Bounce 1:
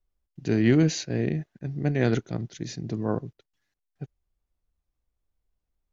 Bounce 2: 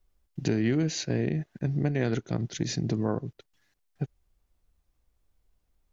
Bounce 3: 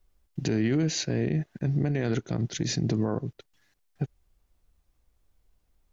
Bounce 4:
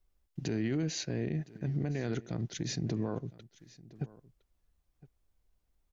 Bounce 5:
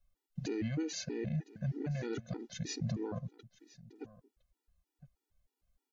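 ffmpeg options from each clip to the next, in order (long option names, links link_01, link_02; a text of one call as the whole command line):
ffmpeg -i in.wav -af "acompressor=threshold=-33dB:ratio=4,volume=8dB" out.wav
ffmpeg -i in.wav -af "alimiter=limit=-20dB:level=0:latency=1:release=27,volume=3dB" out.wav
ffmpeg -i in.wav -af "aecho=1:1:1012:0.0944,volume=-7dB" out.wav
ffmpeg -i in.wav -af "afftfilt=real='re*gt(sin(2*PI*3.2*pts/sr)*(1-2*mod(floor(b*sr/1024/250),2)),0)':imag='im*gt(sin(2*PI*3.2*pts/sr)*(1-2*mod(floor(b*sr/1024/250),2)),0)':win_size=1024:overlap=0.75" out.wav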